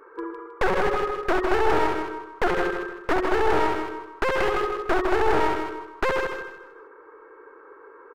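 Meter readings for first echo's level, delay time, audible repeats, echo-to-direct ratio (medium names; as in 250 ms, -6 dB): -6.0 dB, 157 ms, 3, -5.5 dB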